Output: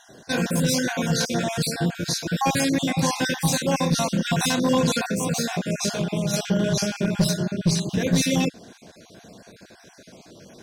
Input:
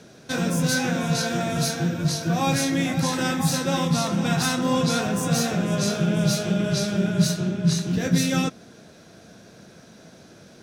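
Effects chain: random holes in the spectrogram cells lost 33%; 5.07–6.34 s: compression 10:1, threshold -22 dBFS, peak gain reduction 7 dB; one-sided clip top -17 dBFS; peaking EQ 130 Hz -3.5 dB 1.6 oct; band-stop 1.3 kHz, Q 6; trim +3.5 dB

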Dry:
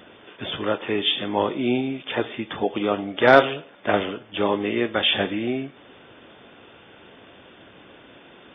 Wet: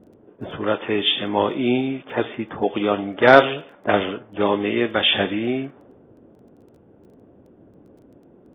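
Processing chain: level-controlled noise filter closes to 340 Hz, open at -18 dBFS; crackle 11 per s -48 dBFS; trim +2.5 dB

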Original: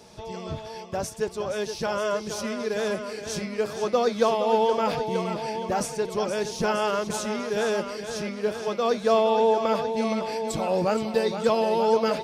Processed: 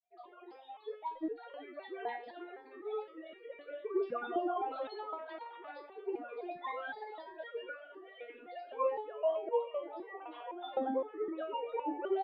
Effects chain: formants replaced by sine waves; gate with hold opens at -38 dBFS; in parallel at -2 dB: compressor with a negative ratio -23 dBFS; on the sum: flange 0.96 Hz, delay 3.9 ms, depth 6.2 ms, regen +85%; granulator 100 ms, spray 100 ms, pitch spread up and down by 7 st; frequency-shifting echo 373 ms, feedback 33%, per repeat -37 Hz, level -16 dB; resonator arpeggio 3.9 Hz 240–470 Hz; trim +3 dB

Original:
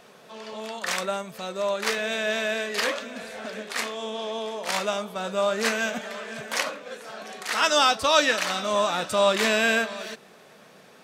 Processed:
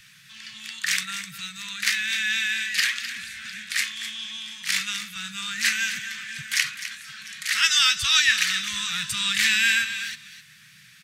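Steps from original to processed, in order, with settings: Chebyshev band-stop 140–1800 Hz, order 3; delay 255 ms -11.5 dB; trim +6 dB

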